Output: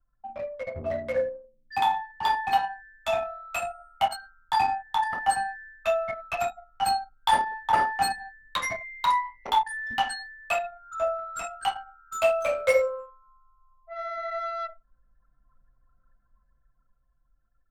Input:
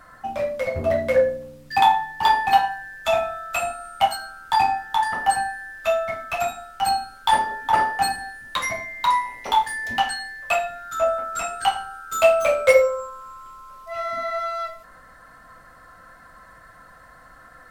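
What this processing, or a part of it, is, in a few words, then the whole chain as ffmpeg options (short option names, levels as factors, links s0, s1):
voice memo with heavy noise removal: -af "anlmdn=63.1,dynaudnorm=f=420:g=11:m=5.01,volume=0.355"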